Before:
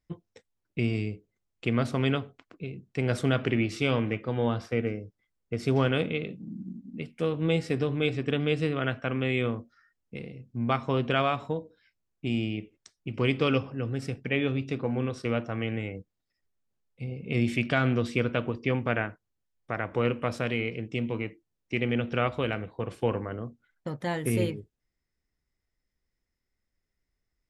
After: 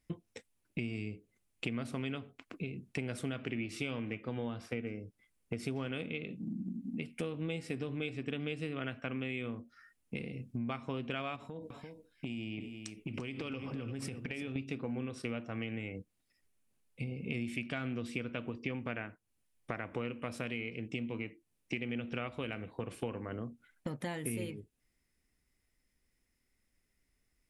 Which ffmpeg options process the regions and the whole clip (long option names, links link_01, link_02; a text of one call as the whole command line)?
ffmpeg -i in.wav -filter_complex "[0:a]asettb=1/sr,asplit=3[link_01][link_02][link_03];[link_01]atrim=end=11.364[link_04];[link_02]atrim=start=11.36:end=14.56,asetpts=PTS-STARTPTS,afade=type=in:duration=0.004:curve=qsin,afade=type=out:start_time=3.196:duration=0.004:curve=qsin,acompressor=threshold=-36dB:ratio=12:attack=3.2:release=140:knee=1:detection=peak,aecho=1:1:342:0.282,atrim=end_sample=141120[link_05];[link_03]atrim=start=14.556[link_06];[link_04][link_05]acrossfade=duration=0.004:curve1=hsin:curve2=qsin[link_07];[link_07][link_06]acrossfade=duration=0.004:curve1=qsin:curve2=hsin,equalizer=frequency=250:width_type=o:width=0.67:gain=5,equalizer=frequency=2500:width_type=o:width=0.67:gain=6,equalizer=frequency=10000:width_type=o:width=0.67:gain=11,acompressor=threshold=-39dB:ratio=5,volume=2.5dB" out.wav